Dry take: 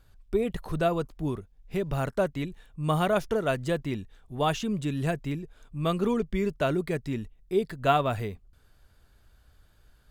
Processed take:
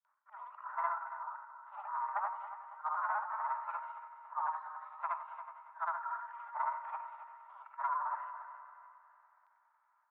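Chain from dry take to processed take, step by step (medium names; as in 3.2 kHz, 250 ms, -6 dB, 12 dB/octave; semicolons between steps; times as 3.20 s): short-time spectra conjugated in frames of 156 ms; Chebyshev low-pass 970 Hz, order 4; gate with hold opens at -58 dBFS; Chebyshev high-pass 610 Hz, order 10; in parallel at -0.5 dB: peak limiter -30.5 dBFS, peak gain reduction 11 dB; on the sum: compression 3:1, threshold -35 dBFS, peak gain reduction 10 dB; multi-head delay 93 ms, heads first and third, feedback 60%, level -13 dB; on a send at -16.5 dB: reverberation RT60 3.1 s, pre-delay 44 ms; on the sum: formant shift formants +6 st; trim +1 dB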